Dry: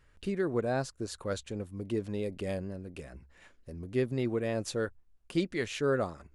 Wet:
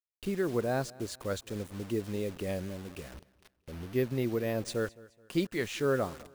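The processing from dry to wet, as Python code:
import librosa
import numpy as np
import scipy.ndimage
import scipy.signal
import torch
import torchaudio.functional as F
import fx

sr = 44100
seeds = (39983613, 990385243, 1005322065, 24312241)

y = fx.quant_dither(x, sr, seeds[0], bits=8, dither='none')
y = fx.echo_feedback(y, sr, ms=213, feedback_pct=38, wet_db=-22)
y = fx.resample_bad(y, sr, factor=3, down='filtered', up='hold', at=(3.15, 4.7))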